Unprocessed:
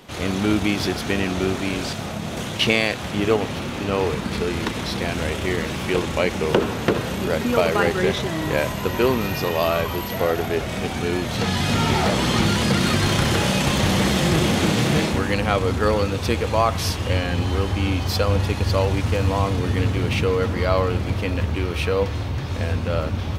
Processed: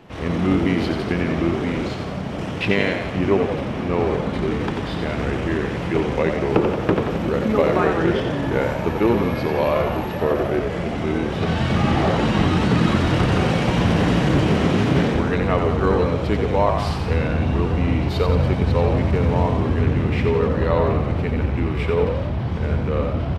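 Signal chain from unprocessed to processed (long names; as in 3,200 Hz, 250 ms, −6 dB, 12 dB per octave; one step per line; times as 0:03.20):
low-pass filter 1,700 Hz 6 dB per octave
pitch shifter −2 semitones
on a send: echo with shifted repeats 88 ms, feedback 55%, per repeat +52 Hz, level −6 dB
on the sum: level +1 dB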